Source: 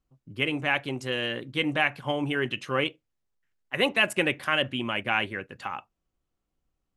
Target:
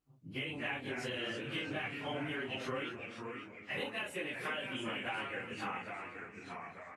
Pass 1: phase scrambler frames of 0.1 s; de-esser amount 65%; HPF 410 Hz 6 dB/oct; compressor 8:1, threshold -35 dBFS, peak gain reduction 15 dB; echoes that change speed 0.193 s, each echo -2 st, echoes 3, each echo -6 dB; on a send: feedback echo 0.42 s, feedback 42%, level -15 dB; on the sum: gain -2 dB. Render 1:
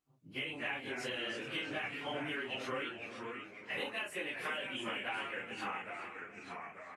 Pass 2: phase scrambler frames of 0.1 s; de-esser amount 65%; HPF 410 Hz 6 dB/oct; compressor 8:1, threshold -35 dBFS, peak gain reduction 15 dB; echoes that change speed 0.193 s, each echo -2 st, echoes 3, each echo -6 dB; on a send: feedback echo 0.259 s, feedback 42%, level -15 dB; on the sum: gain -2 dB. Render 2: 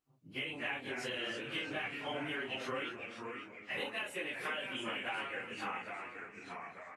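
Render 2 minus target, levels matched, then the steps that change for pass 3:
125 Hz band -6.0 dB
change: HPF 110 Hz 6 dB/oct

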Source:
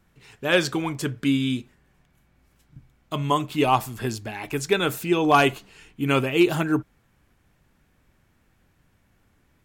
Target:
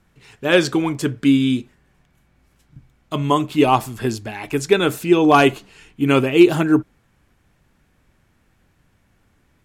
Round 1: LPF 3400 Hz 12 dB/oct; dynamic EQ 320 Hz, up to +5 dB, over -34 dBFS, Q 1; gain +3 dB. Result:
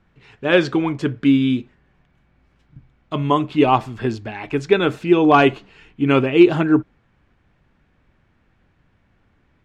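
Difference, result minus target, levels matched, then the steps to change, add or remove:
8000 Hz band -13.5 dB
change: LPF 13000 Hz 12 dB/oct

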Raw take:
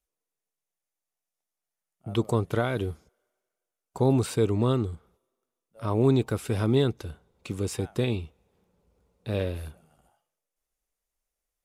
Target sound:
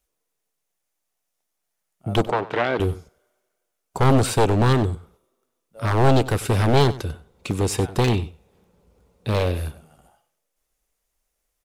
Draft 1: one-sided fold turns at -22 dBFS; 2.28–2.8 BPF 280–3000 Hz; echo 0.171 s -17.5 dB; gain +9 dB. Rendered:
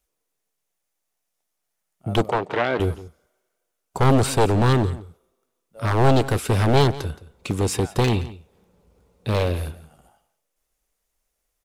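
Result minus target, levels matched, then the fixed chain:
echo 75 ms late
one-sided fold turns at -22 dBFS; 2.28–2.8 BPF 280–3000 Hz; echo 96 ms -17.5 dB; gain +9 dB

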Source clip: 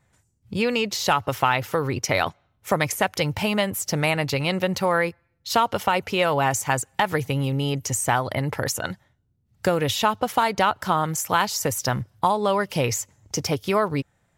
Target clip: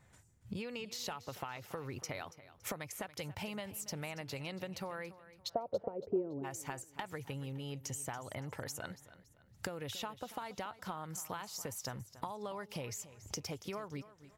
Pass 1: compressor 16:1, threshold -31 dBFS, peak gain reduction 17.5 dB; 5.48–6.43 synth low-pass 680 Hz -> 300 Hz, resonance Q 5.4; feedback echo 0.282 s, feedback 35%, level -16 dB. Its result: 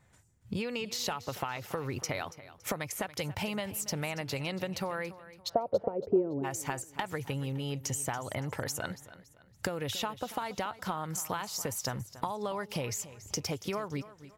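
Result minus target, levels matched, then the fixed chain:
compressor: peak gain reduction -7.5 dB
compressor 16:1, threshold -39 dBFS, peak gain reduction 25 dB; 5.48–6.43 synth low-pass 680 Hz -> 300 Hz, resonance Q 5.4; feedback echo 0.282 s, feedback 35%, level -16 dB

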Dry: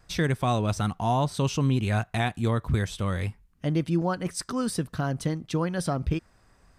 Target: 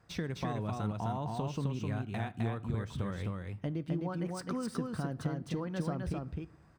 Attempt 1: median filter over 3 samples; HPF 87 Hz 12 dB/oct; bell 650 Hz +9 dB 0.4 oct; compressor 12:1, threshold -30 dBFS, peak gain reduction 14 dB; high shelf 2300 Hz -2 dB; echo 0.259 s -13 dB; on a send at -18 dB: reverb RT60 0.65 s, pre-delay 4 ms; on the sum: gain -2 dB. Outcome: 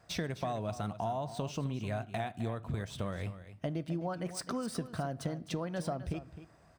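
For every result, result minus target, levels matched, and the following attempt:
echo-to-direct -9 dB; 4000 Hz band +4.5 dB; 500 Hz band +3.0 dB
median filter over 3 samples; HPF 87 Hz 12 dB/oct; bell 650 Hz +9 dB 0.4 oct; compressor 12:1, threshold -30 dBFS, peak gain reduction 14 dB; high shelf 2300 Hz -2 dB; echo 0.259 s -3 dB; on a send at -18 dB: reverb RT60 0.65 s, pre-delay 4 ms; on the sum: gain -2 dB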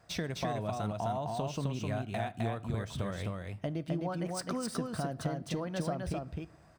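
4000 Hz band +4.5 dB; 500 Hz band +3.0 dB
median filter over 3 samples; HPF 87 Hz 12 dB/oct; bell 650 Hz +9 dB 0.4 oct; compressor 12:1, threshold -30 dBFS, peak gain reduction 14 dB; high shelf 2300 Hz -10 dB; echo 0.259 s -3 dB; on a send at -18 dB: reverb RT60 0.65 s, pre-delay 4 ms; on the sum: gain -2 dB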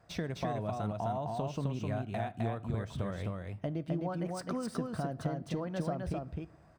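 500 Hz band +3.0 dB
median filter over 3 samples; HPF 87 Hz 12 dB/oct; bell 650 Hz -2 dB 0.4 oct; compressor 12:1, threshold -30 dBFS, peak gain reduction 11 dB; high shelf 2300 Hz -10 dB; echo 0.259 s -3 dB; on a send at -18 dB: reverb RT60 0.65 s, pre-delay 4 ms; on the sum: gain -2 dB

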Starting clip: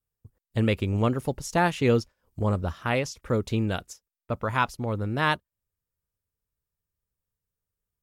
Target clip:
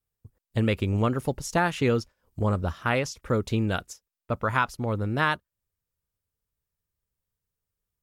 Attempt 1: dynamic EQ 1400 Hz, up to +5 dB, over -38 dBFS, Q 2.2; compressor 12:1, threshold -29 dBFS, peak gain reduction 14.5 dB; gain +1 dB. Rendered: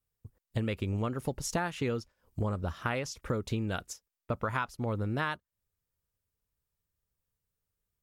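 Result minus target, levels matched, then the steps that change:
compressor: peak gain reduction +9 dB
change: compressor 12:1, threshold -19 dBFS, peak gain reduction 5 dB

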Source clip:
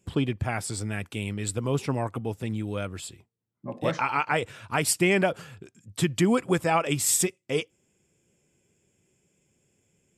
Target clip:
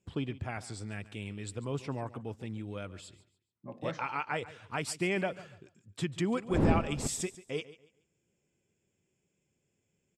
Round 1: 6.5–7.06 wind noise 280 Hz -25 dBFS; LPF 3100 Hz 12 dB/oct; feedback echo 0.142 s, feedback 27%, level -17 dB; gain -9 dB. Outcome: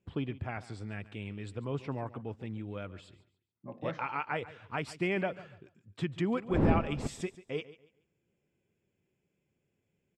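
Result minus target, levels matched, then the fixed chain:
8000 Hz band -12.5 dB
6.5–7.06 wind noise 280 Hz -25 dBFS; LPF 7000 Hz 12 dB/oct; feedback echo 0.142 s, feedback 27%, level -17 dB; gain -9 dB

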